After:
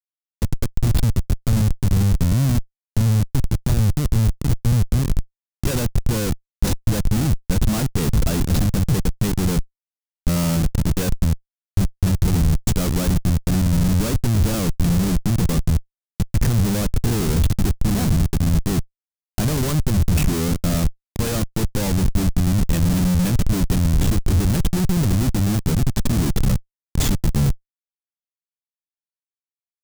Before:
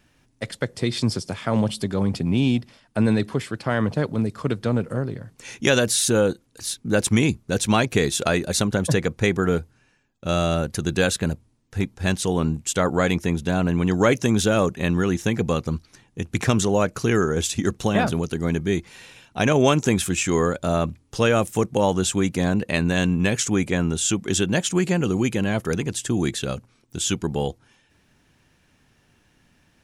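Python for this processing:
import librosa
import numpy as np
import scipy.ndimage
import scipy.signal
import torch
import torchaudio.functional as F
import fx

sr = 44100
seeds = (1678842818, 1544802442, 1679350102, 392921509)

y = fx.env_lowpass_down(x, sr, base_hz=2800.0, full_db=-18.0)
y = y + 10.0 ** (-19.0 / 20.0) * np.pad(y, (int(436 * sr / 1000.0), 0))[:len(y)]
y = fx.schmitt(y, sr, flips_db=-24.5)
y = fx.bass_treble(y, sr, bass_db=14, treble_db=11)
y = F.gain(torch.from_numpy(y), -4.0).numpy()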